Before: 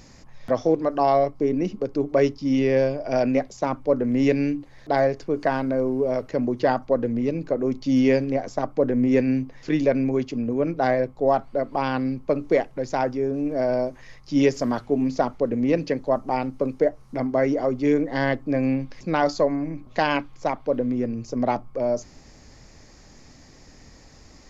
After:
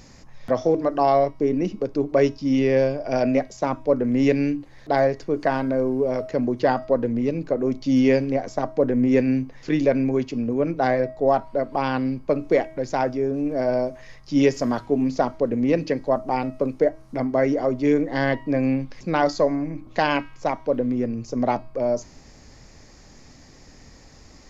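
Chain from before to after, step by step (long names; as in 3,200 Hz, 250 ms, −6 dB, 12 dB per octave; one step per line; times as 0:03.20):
hum removal 319.1 Hz, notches 37
level +1 dB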